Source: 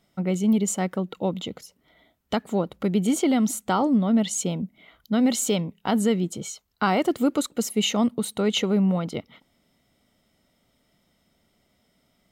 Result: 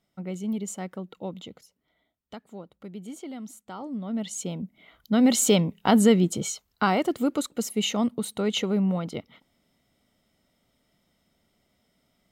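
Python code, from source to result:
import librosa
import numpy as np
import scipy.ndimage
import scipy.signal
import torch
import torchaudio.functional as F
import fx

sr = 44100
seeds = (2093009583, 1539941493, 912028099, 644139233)

y = fx.gain(x, sr, db=fx.line((1.44, -9.0), (2.42, -17.0), (3.71, -17.0), (4.24, -8.0), (5.52, 4.0), (6.5, 4.0), (7.07, -3.0)))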